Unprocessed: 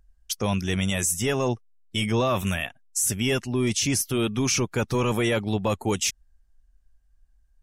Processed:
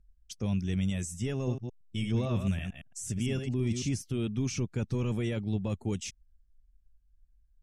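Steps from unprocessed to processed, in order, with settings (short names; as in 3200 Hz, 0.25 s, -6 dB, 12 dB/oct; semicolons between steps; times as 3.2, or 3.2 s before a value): 1.36–3.9 reverse delay 0.112 s, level -6 dB; EQ curve 180 Hz 0 dB, 1000 Hz -16 dB, 2400 Hz -11 dB, 8500 Hz -12 dB, 14000 Hz -29 dB; gain -3 dB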